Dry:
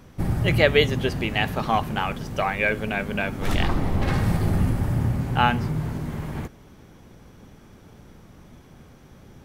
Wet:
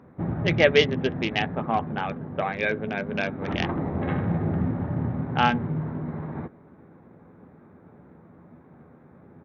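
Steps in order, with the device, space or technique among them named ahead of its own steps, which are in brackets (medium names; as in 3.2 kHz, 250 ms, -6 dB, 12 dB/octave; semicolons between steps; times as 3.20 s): local Wiener filter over 15 samples; 1.39–3.12 s: distance through air 330 m; doubling 12 ms -11 dB; dynamic bell 1.1 kHz, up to -3 dB, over -39 dBFS, Q 1.8; Bluetooth headset (high-pass 140 Hz 12 dB/octave; resampled via 8 kHz; SBC 64 kbps 48 kHz)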